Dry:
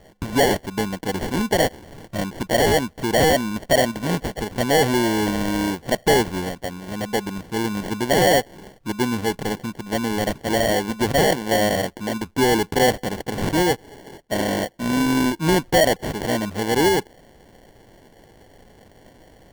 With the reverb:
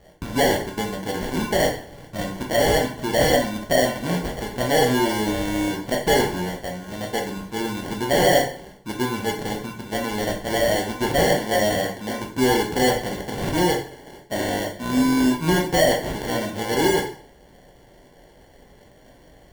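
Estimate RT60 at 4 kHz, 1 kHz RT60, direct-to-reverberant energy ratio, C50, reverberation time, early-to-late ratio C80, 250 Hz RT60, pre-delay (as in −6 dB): 0.45 s, 0.50 s, −0.5 dB, 7.0 dB, 0.50 s, 11.5 dB, 0.45 s, 5 ms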